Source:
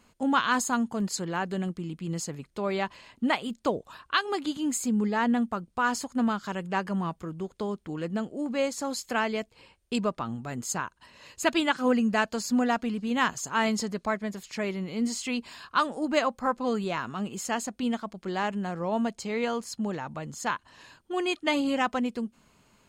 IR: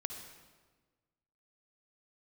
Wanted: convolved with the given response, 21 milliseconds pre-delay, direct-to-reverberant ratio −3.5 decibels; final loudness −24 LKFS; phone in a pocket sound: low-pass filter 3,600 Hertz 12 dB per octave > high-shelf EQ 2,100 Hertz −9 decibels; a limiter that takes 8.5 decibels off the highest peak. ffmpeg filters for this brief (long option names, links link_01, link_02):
-filter_complex "[0:a]alimiter=limit=-19.5dB:level=0:latency=1,asplit=2[link_01][link_02];[1:a]atrim=start_sample=2205,adelay=21[link_03];[link_02][link_03]afir=irnorm=-1:irlink=0,volume=4dB[link_04];[link_01][link_04]amix=inputs=2:normalize=0,lowpass=3600,highshelf=frequency=2100:gain=-9,volume=2.5dB"